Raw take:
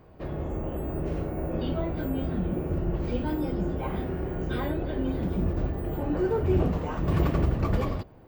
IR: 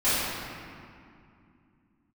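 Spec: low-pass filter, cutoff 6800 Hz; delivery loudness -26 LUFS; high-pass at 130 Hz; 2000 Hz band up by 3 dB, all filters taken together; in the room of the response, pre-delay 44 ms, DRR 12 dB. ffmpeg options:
-filter_complex "[0:a]highpass=130,lowpass=6.8k,equalizer=f=2k:t=o:g=4,asplit=2[a][b];[1:a]atrim=start_sample=2205,adelay=44[c];[b][c]afir=irnorm=-1:irlink=0,volume=-28dB[d];[a][d]amix=inputs=2:normalize=0,volume=4.5dB"

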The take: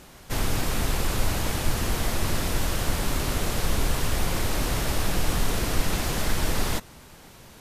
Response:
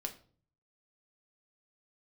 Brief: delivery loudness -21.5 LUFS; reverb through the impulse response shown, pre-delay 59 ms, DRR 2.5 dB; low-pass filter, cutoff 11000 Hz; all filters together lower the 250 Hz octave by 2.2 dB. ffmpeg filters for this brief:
-filter_complex "[0:a]lowpass=11k,equalizer=f=250:t=o:g=-3,asplit=2[a][b];[1:a]atrim=start_sample=2205,adelay=59[c];[b][c]afir=irnorm=-1:irlink=0,volume=-2dB[d];[a][d]amix=inputs=2:normalize=0,volume=5dB"

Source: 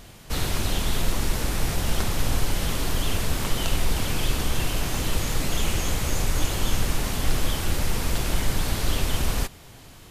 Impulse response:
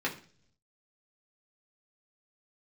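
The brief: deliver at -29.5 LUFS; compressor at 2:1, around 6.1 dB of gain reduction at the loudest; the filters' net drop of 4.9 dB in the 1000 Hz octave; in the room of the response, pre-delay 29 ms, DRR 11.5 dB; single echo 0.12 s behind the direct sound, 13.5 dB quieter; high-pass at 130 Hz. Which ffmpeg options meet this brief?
-filter_complex "[0:a]highpass=130,equalizer=f=1k:t=o:g=-6.5,acompressor=threshold=-38dB:ratio=2,aecho=1:1:120:0.211,asplit=2[a][b];[1:a]atrim=start_sample=2205,adelay=29[c];[b][c]afir=irnorm=-1:irlink=0,volume=-19dB[d];[a][d]amix=inputs=2:normalize=0,volume=5.5dB"

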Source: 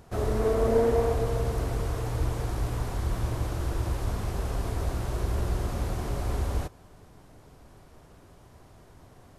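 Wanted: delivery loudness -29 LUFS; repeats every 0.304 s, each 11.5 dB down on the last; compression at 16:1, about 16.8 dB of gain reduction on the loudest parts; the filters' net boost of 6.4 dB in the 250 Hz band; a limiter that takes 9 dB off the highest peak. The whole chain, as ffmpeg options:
-af "equalizer=f=250:t=o:g=8,acompressor=threshold=-33dB:ratio=16,alimiter=level_in=9.5dB:limit=-24dB:level=0:latency=1,volume=-9.5dB,aecho=1:1:304|608|912:0.266|0.0718|0.0194,volume=15dB"

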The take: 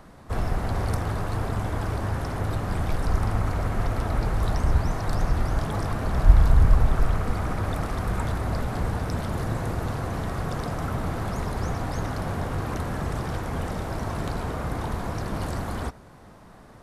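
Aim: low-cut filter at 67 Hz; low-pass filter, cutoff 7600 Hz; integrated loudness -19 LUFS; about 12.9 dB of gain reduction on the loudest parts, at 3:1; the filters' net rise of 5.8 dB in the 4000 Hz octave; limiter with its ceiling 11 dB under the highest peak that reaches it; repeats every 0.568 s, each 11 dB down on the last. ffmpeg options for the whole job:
-af "highpass=67,lowpass=7.6k,equalizer=f=4k:t=o:g=7.5,acompressor=threshold=-31dB:ratio=3,alimiter=level_in=5dB:limit=-24dB:level=0:latency=1,volume=-5dB,aecho=1:1:568|1136|1704:0.282|0.0789|0.0221,volume=19dB"

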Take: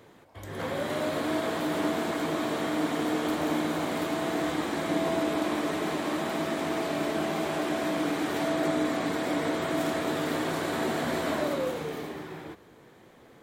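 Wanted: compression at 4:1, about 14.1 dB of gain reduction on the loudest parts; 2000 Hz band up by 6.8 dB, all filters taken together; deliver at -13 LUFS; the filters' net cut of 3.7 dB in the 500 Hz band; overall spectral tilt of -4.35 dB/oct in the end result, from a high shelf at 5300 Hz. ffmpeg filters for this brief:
-af "equalizer=f=500:t=o:g=-6,equalizer=f=2k:t=o:g=8,highshelf=f=5.3k:g=5.5,acompressor=threshold=-42dB:ratio=4,volume=28.5dB"

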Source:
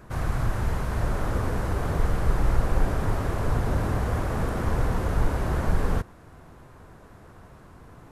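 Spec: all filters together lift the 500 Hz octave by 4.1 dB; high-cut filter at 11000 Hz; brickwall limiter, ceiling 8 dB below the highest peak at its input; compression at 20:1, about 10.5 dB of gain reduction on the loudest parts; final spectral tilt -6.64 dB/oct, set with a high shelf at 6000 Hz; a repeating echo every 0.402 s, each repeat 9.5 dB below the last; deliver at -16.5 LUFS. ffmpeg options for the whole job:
-af "lowpass=11k,equalizer=f=500:t=o:g=5,highshelf=f=6k:g=5.5,acompressor=threshold=-25dB:ratio=20,alimiter=level_in=1dB:limit=-24dB:level=0:latency=1,volume=-1dB,aecho=1:1:402|804|1206|1608:0.335|0.111|0.0365|0.012,volume=19dB"

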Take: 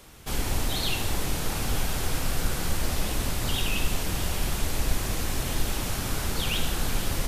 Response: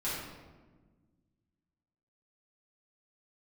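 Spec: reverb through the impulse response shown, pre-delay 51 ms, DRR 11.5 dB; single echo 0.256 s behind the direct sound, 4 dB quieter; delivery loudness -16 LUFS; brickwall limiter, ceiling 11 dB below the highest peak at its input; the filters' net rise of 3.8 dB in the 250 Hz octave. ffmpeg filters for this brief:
-filter_complex "[0:a]equalizer=f=250:t=o:g=5,alimiter=limit=-22dB:level=0:latency=1,aecho=1:1:256:0.631,asplit=2[a][b];[1:a]atrim=start_sample=2205,adelay=51[c];[b][c]afir=irnorm=-1:irlink=0,volume=-17dB[d];[a][d]amix=inputs=2:normalize=0,volume=15dB"

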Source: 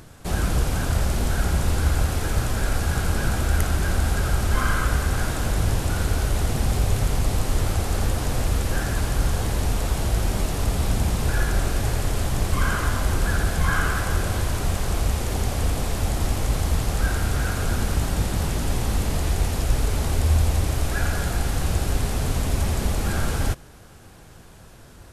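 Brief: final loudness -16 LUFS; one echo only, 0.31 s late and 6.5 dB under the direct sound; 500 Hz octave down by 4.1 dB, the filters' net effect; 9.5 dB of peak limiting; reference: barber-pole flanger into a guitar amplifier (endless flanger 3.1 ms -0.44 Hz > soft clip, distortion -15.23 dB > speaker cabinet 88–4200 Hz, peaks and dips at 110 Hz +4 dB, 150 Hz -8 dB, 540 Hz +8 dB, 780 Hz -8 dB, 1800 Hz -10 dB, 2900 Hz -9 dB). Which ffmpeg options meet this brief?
-filter_complex "[0:a]equalizer=f=500:t=o:g=-8.5,alimiter=limit=-16dB:level=0:latency=1,aecho=1:1:310:0.473,asplit=2[a][b];[b]adelay=3.1,afreqshift=-0.44[c];[a][c]amix=inputs=2:normalize=1,asoftclip=threshold=-22.5dB,highpass=88,equalizer=f=110:t=q:w=4:g=4,equalizer=f=150:t=q:w=4:g=-8,equalizer=f=540:t=q:w=4:g=8,equalizer=f=780:t=q:w=4:g=-8,equalizer=f=1.8k:t=q:w=4:g=-10,equalizer=f=2.9k:t=q:w=4:g=-9,lowpass=f=4.2k:w=0.5412,lowpass=f=4.2k:w=1.3066,volume=20dB"

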